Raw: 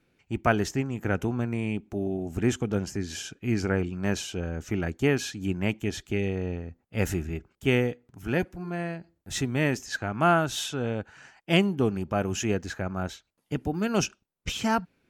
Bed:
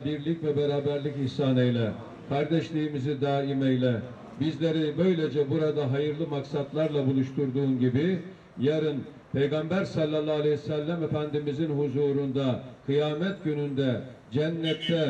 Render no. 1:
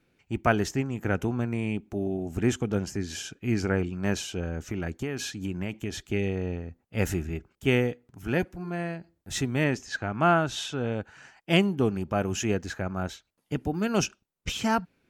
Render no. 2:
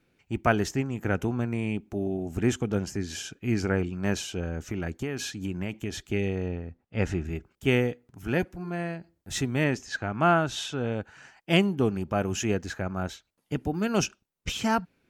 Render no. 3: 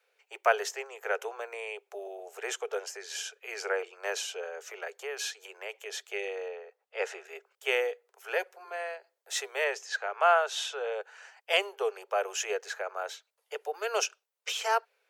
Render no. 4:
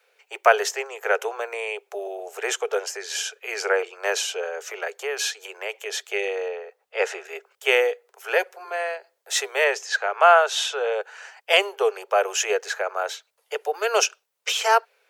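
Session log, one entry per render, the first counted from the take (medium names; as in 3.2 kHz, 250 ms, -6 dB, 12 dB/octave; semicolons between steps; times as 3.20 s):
4.55–6.03 s: compression 12:1, threshold -26 dBFS; 9.64–10.92 s: distance through air 52 m
6.48–7.25 s: distance through air 110 m
steep high-pass 420 Hz 96 dB/octave
trim +9 dB; peak limiter -3 dBFS, peak gain reduction 1.5 dB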